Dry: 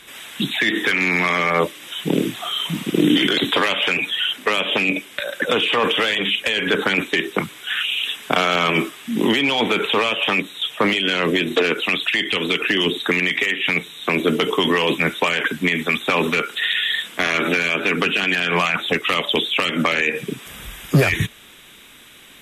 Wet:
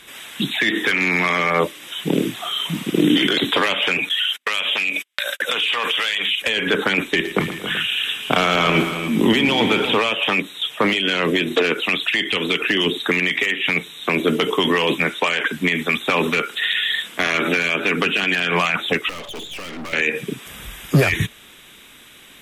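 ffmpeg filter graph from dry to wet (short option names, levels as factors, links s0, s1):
-filter_complex "[0:a]asettb=1/sr,asplit=3[s0][s1][s2];[s0]atrim=end=4.094[s3];[s1]atrim=start=4.09:end=6.42,asetpts=PTS-STARTPTS,afade=t=in:d=0.004:c=qsin,afade=t=out:st=2.326:d=0.004:c=qsin,agate=range=0.00708:threshold=0.0251:ratio=16:release=100:detection=peak,tiltshelf=f=750:g=-9.5,acompressor=threshold=0.126:ratio=4:attack=3.2:release=140:knee=1:detection=peak[s4];[s2]atrim=start=6.416[s5];[s3][s4]acrossfade=d=0.004:c1=hsin:c2=qsin[s6];[s6][s5]acrossfade=d=0.004:c1=qsin:c2=hsin,asettb=1/sr,asplit=3[s7][s8][s9];[s7]atrim=end=7.054[s10];[s8]atrim=start=7.05:end=9.97,asetpts=PTS-STARTPTS,afade=t=in:d=0.004:c=qsin,afade=t=out:st=2.916:d=0.004:c=qsin,lowshelf=f=120:g=11.5,aecho=1:1:117|232|274|298|383:0.237|0.106|0.266|0.141|0.188,atrim=end_sample=128772[s11];[s9]atrim=start=9.966[s12];[s10][s11]acrossfade=d=0.004:c1=hsin:c2=qsin[s13];[s13][s12]acrossfade=d=0.004:c1=qsin:c2=hsin,asettb=1/sr,asplit=3[s14][s15][s16];[s14]atrim=end=15.044[s17];[s15]atrim=start=15.04:end=15.53,asetpts=PTS-STARTPTS,afade=t=in:d=0.004:c=qsin,afade=t=out:st=0.486:d=0.004:c=qsin,lowpass=11000,lowshelf=f=180:g=-9[s18];[s16]atrim=start=15.526[s19];[s17][s18]acrossfade=d=0.004:c1=hsin:c2=qsin[s20];[s20][s19]acrossfade=d=0.004:c1=qsin:c2=hsin,asettb=1/sr,asplit=3[s21][s22][s23];[s21]atrim=end=19.094[s24];[s22]atrim=start=19.09:end=19.93,asetpts=PTS-STARTPTS,afade=t=in:d=0.004:c=qsin,afade=t=out:st=0.836:d=0.004:c=qsin,highpass=f=160:w=0.5412,highpass=f=160:w=1.3066,highshelf=f=3800:g=-10,aeval=exprs='(tanh(31.6*val(0)+0.7)-tanh(0.7))/31.6':c=same[s25];[s23]atrim=start=19.926[s26];[s24][s25]acrossfade=d=0.004:c1=hsin:c2=qsin[s27];[s27][s26]acrossfade=d=0.004:c1=qsin:c2=hsin"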